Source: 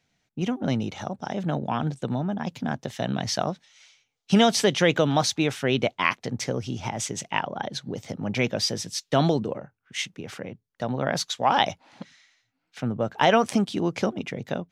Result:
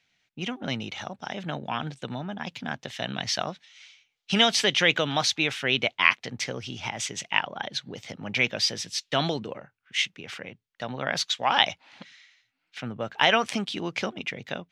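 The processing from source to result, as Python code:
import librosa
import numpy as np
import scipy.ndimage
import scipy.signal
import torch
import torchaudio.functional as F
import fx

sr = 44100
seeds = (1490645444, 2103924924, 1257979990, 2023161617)

y = fx.peak_eq(x, sr, hz=2700.0, db=14.0, octaves=2.4)
y = y * 10.0 ** (-8.0 / 20.0)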